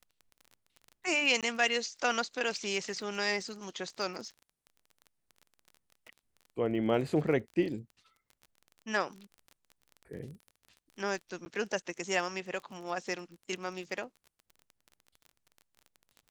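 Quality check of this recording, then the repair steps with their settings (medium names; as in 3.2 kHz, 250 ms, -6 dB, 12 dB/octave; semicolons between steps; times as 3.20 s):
crackle 27 per s -41 dBFS
1.41–1.43 s: dropout 17 ms
11.45–11.46 s: dropout 10 ms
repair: de-click; interpolate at 1.41 s, 17 ms; interpolate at 11.45 s, 10 ms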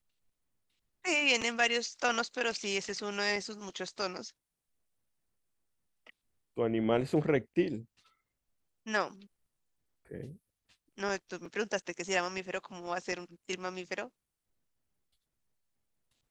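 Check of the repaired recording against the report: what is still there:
nothing left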